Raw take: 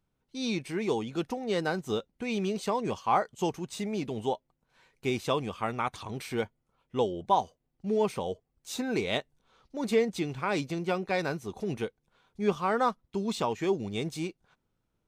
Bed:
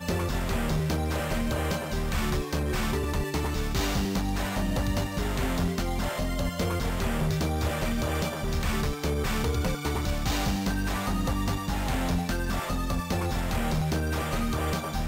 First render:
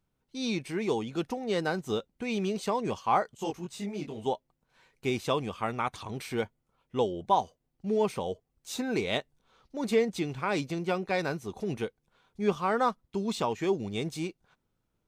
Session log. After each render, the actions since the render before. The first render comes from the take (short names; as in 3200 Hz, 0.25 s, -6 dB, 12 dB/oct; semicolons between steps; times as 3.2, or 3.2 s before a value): 3.37–4.26 detuned doubles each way 16 cents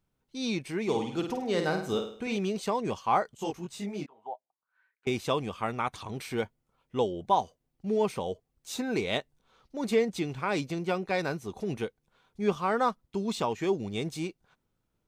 0.83–2.37 flutter echo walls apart 8.8 m, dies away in 0.51 s; 4.06–5.07 auto-wah 720–1700 Hz, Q 6.6, down, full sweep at -33 dBFS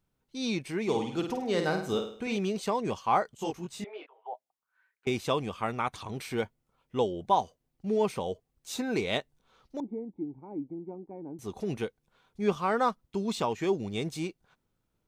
3.84–4.33 elliptic band-pass 440–3300 Hz; 9.8–11.39 vocal tract filter u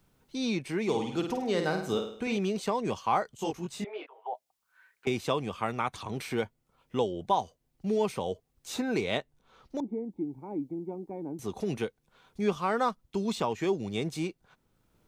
three-band squash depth 40%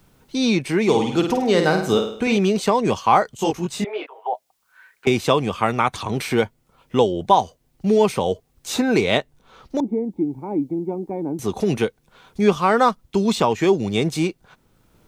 gain +11.5 dB